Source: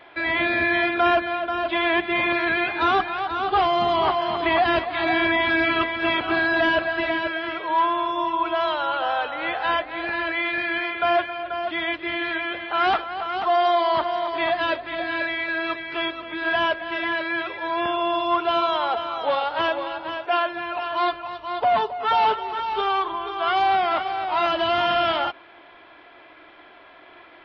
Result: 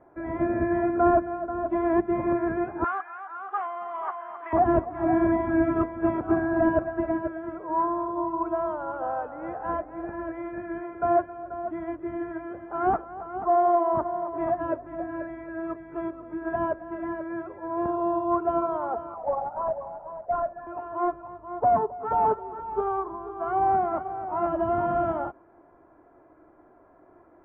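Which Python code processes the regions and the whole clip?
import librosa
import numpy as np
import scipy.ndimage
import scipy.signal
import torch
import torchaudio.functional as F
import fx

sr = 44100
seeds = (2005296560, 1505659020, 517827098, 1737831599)

y = fx.chain(x, sr, fx.highpass(hz=1300.0, slope=12),
    fx.peak_eq(hz=2000.0, db=9.0, octaves=2.0), at=(2.84, 4.53))
y = fx.chain(y, sr, fx.envelope_sharpen(power=3.0),
    fx.highpass(hz=570.0, slope=24),
    fx.quant_companded(bits=4), at=(19.14, 20.67))
y = scipy.signal.sosfilt(scipy.signal.butter(4, 1400.0, 'lowpass', fs=sr, output='sos'), y)
y = fx.tilt_shelf(y, sr, db=8.5, hz=680.0)
y = fx.upward_expand(y, sr, threshold_db=-30.0, expansion=1.5)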